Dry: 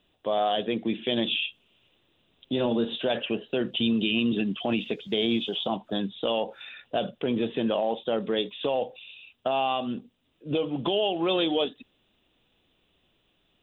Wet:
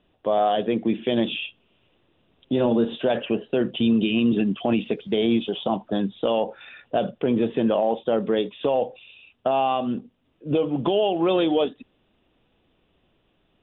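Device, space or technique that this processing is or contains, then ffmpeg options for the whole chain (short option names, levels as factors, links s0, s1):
phone in a pocket: -af "lowpass=3400,highshelf=f=2400:g=-9.5,volume=1.88"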